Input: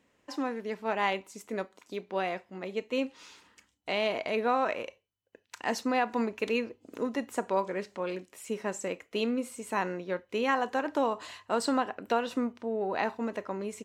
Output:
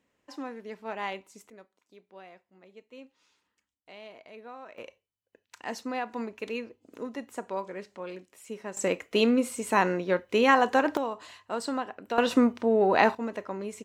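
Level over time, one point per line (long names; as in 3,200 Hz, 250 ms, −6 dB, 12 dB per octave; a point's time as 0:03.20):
−5.5 dB
from 0:01.50 −17.5 dB
from 0:04.78 −5 dB
from 0:08.77 +7 dB
from 0:10.97 −3.5 dB
from 0:12.18 +9 dB
from 0:13.15 0 dB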